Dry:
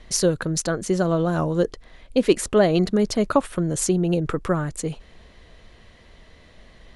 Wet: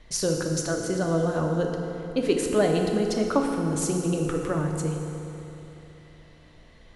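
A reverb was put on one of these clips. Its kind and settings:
feedback delay network reverb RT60 3.2 s, high-frequency decay 0.7×, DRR 1 dB
level −6 dB

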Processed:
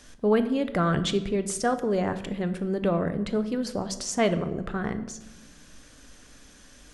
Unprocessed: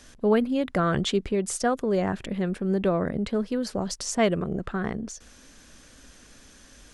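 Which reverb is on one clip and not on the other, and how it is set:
rectangular room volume 420 cubic metres, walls mixed, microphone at 0.41 metres
level −1 dB

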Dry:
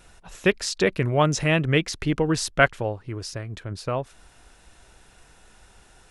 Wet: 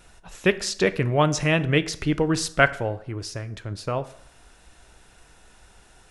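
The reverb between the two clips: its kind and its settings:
dense smooth reverb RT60 0.7 s, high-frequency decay 0.7×, DRR 13 dB

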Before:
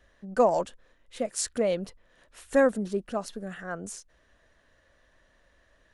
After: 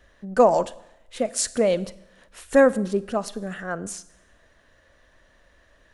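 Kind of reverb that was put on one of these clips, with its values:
four-comb reverb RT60 0.84 s, combs from 32 ms, DRR 17.5 dB
level +5.5 dB

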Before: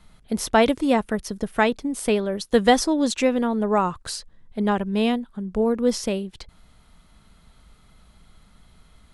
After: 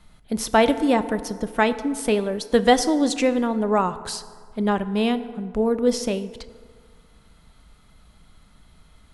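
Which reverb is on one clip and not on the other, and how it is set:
feedback delay network reverb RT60 1.9 s, low-frequency decay 0.9×, high-frequency decay 0.5×, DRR 12 dB

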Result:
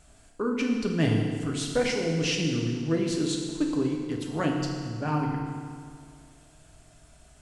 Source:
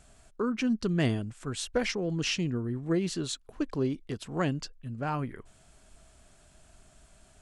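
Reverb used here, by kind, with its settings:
feedback delay network reverb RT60 2.1 s, low-frequency decay 1.05×, high-frequency decay 0.85×, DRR 0 dB

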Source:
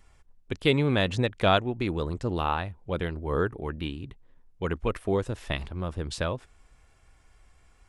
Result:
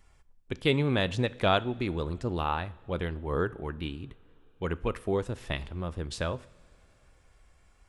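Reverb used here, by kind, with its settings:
coupled-rooms reverb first 0.57 s, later 4.2 s, from −18 dB, DRR 16 dB
level −2.5 dB

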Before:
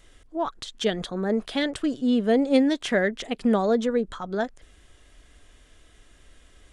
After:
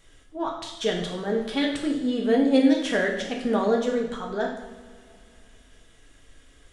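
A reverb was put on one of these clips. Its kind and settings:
coupled-rooms reverb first 0.77 s, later 2.9 s, from −18 dB, DRR −1 dB
level −3 dB

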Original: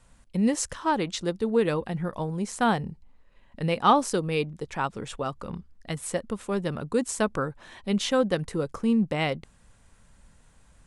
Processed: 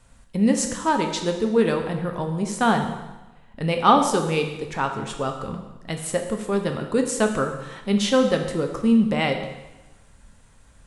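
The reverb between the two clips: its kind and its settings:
dense smooth reverb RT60 1.1 s, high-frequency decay 0.95×, DRR 4 dB
level +3 dB

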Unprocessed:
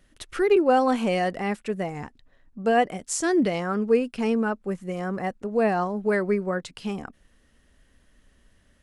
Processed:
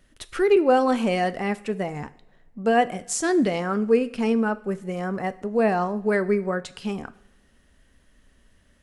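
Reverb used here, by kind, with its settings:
coupled-rooms reverb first 0.52 s, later 1.8 s, from −18 dB, DRR 13 dB
level +1 dB

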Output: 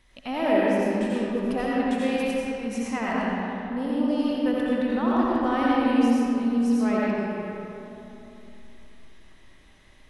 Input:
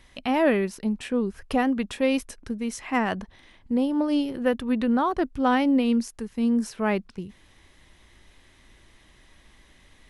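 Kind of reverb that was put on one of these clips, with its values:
comb and all-pass reverb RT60 3.1 s, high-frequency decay 0.55×, pre-delay 45 ms, DRR −7 dB
level −7.5 dB

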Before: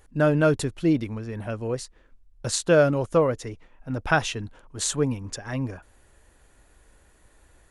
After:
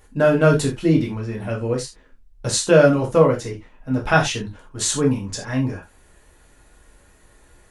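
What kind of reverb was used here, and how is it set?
reverb whose tail is shaped and stops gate 110 ms falling, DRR −1 dB
level +2 dB

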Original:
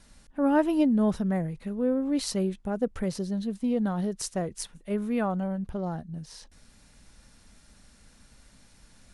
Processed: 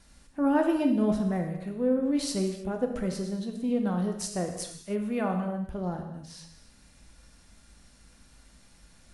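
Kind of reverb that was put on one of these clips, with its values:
reverb whose tail is shaped and stops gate 340 ms falling, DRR 3 dB
level −2 dB

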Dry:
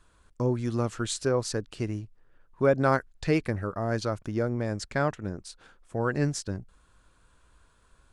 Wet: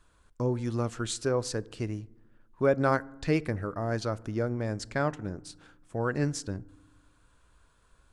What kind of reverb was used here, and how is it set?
feedback delay network reverb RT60 0.99 s, low-frequency decay 1.55×, high-frequency decay 0.4×, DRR 19.5 dB
level −2 dB

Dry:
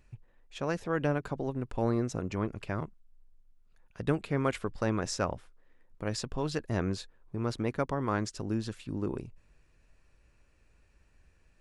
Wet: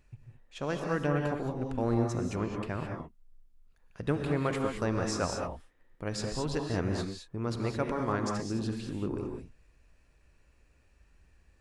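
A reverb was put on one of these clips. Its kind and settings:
reverb whose tail is shaped and stops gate 240 ms rising, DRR 2 dB
level −1.5 dB

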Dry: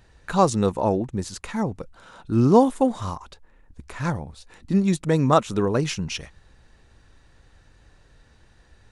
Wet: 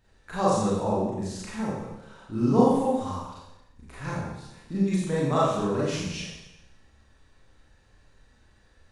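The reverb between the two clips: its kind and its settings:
four-comb reverb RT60 0.94 s, combs from 29 ms, DRR −8 dB
level −12.5 dB

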